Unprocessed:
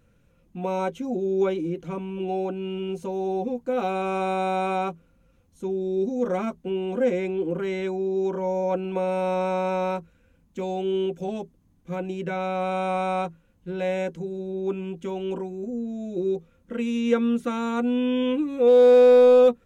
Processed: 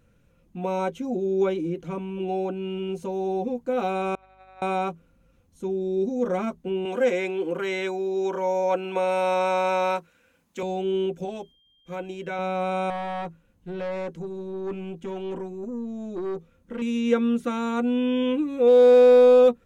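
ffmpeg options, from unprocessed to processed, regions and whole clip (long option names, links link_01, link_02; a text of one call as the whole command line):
ffmpeg -i in.wav -filter_complex "[0:a]asettb=1/sr,asplit=3[link_01][link_02][link_03];[link_01]atrim=end=4.154[link_04];[link_02]atrim=start=4.15:end=4.62,asetpts=PTS-STARTPTS,afade=type=in:duration=0.004:curve=qsin,afade=type=out:start_time=0.466:duration=0.004:curve=qsin,agate=range=-28dB:threshold=-22dB:ratio=16:release=100:detection=peak,highpass=680,lowpass=3300,aeval=exprs='val(0)+0.000708*(sin(2*PI*50*n/s)+sin(2*PI*2*50*n/s)/2+sin(2*PI*3*50*n/s)/3+sin(2*PI*4*50*n/s)/4+sin(2*PI*5*50*n/s)/5)':channel_layout=same[link_05];[link_03]atrim=start=4.616[link_06];[link_04][link_05]acrossfade=duration=0.004:curve1=hsin:curve2=qsin[link_07];[link_07][link_06]acrossfade=duration=0.004:curve1=qsin:curve2=hsin,asettb=1/sr,asplit=3[link_08][link_09][link_10];[link_08]atrim=end=6.854[link_11];[link_09]atrim=start=6.85:end=10.63,asetpts=PTS-STARTPTS,afade=type=in:duration=0.004:curve=qsin,afade=type=out:start_time=3.776:duration=0.004:curve=qsin,highpass=frequency=850:poles=1,acontrast=76[link_12];[link_10]atrim=start=10.626[link_13];[link_11][link_12]acrossfade=duration=0.004:curve1=hsin:curve2=qsin[link_14];[link_14][link_13]acrossfade=duration=0.004:curve1=qsin:curve2=hsin,asettb=1/sr,asplit=3[link_15][link_16][link_17];[link_15]atrim=end=11.254[link_18];[link_16]atrim=start=11.25:end=12.39,asetpts=PTS-STARTPTS,afade=type=in:duration=0.004:curve=qsin,afade=type=out:start_time=1.136:duration=0.004:curve=qsin,agate=range=-33dB:threshold=-54dB:ratio=3:release=100:detection=peak,equalizer=frequency=150:width_type=o:width=2.3:gain=-8,aeval=exprs='val(0)+0.000891*sin(2*PI*3200*n/s)':channel_layout=same[link_19];[link_17]atrim=start=12.386[link_20];[link_18][link_19]acrossfade=duration=0.004:curve1=hsin:curve2=qsin[link_21];[link_21][link_20]acrossfade=duration=0.004:curve1=qsin:curve2=hsin,asettb=1/sr,asplit=3[link_22][link_23][link_24];[link_22]atrim=end=12.904[link_25];[link_23]atrim=start=12.9:end=16.82,asetpts=PTS-STARTPTS,afade=type=in:duration=0.004:curve=qsin,afade=type=out:start_time=3.916:duration=0.004:curve=qsin,acrossover=split=3000[link_26][link_27];[link_27]acompressor=threshold=-52dB:ratio=4:attack=1:release=60[link_28];[link_26][link_28]amix=inputs=2:normalize=0,aeval=exprs='(tanh(20*val(0)+0.25)-tanh(0.25))/20':channel_layout=same[link_29];[link_24]atrim=start=16.816[link_30];[link_25][link_29]acrossfade=duration=0.004:curve1=hsin:curve2=qsin[link_31];[link_31][link_30]acrossfade=duration=0.004:curve1=qsin:curve2=hsin" out.wav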